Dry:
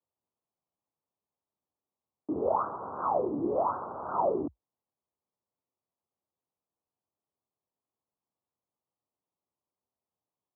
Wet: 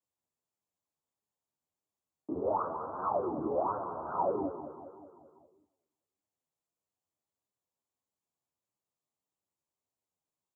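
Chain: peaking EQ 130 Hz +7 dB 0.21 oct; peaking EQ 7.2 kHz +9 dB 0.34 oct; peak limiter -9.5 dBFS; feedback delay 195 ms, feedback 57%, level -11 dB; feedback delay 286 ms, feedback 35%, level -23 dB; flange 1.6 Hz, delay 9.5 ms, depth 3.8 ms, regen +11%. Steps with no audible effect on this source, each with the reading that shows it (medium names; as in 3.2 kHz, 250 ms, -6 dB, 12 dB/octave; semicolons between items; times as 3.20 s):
peaking EQ 7.2 kHz: input has nothing above 1.5 kHz; peak limiter -9.5 dBFS: peak at its input -16.0 dBFS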